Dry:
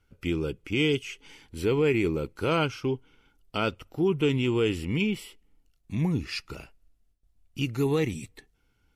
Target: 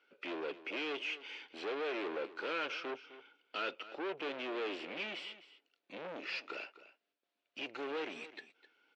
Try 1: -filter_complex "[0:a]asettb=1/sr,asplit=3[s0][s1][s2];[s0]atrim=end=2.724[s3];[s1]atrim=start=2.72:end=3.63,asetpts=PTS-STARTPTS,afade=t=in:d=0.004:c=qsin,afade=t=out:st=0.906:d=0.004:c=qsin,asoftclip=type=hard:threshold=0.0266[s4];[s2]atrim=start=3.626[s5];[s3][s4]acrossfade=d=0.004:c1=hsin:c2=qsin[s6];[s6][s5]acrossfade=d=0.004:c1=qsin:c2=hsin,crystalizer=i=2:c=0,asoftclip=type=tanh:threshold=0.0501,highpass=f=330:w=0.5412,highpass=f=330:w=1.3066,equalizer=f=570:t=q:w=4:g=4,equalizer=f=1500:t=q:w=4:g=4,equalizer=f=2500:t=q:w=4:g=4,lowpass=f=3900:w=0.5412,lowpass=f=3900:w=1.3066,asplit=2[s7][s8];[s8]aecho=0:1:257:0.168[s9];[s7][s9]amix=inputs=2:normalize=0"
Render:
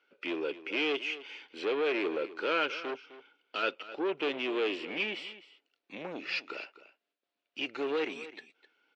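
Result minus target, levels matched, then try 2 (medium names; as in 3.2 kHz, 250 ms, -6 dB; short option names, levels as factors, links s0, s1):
saturation: distortion -6 dB
-filter_complex "[0:a]asettb=1/sr,asplit=3[s0][s1][s2];[s0]atrim=end=2.724[s3];[s1]atrim=start=2.72:end=3.63,asetpts=PTS-STARTPTS,afade=t=in:d=0.004:c=qsin,afade=t=out:st=0.906:d=0.004:c=qsin,asoftclip=type=hard:threshold=0.0266[s4];[s2]atrim=start=3.626[s5];[s3][s4]acrossfade=d=0.004:c1=hsin:c2=qsin[s6];[s6][s5]acrossfade=d=0.004:c1=qsin:c2=hsin,crystalizer=i=2:c=0,asoftclip=type=tanh:threshold=0.0158,highpass=f=330:w=0.5412,highpass=f=330:w=1.3066,equalizer=f=570:t=q:w=4:g=4,equalizer=f=1500:t=q:w=4:g=4,equalizer=f=2500:t=q:w=4:g=4,lowpass=f=3900:w=0.5412,lowpass=f=3900:w=1.3066,asplit=2[s7][s8];[s8]aecho=0:1:257:0.168[s9];[s7][s9]amix=inputs=2:normalize=0"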